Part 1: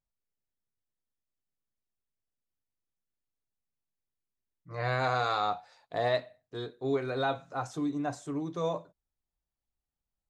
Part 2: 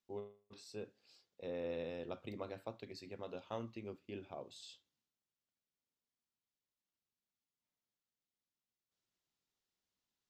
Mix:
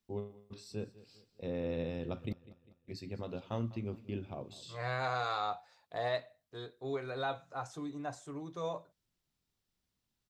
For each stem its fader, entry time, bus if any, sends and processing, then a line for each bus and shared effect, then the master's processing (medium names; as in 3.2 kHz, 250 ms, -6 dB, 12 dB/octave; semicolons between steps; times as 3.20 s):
-5.0 dB, 0.00 s, no send, no echo send, peaking EQ 250 Hz -5.5 dB 1.3 oct
+2.5 dB, 0.00 s, muted 2.33–2.88 s, no send, echo send -18.5 dB, tone controls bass +12 dB, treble +1 dB; band-stop 6.6 kHz, Q 17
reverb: none
echo: feedback delay 200 ms, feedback 44%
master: none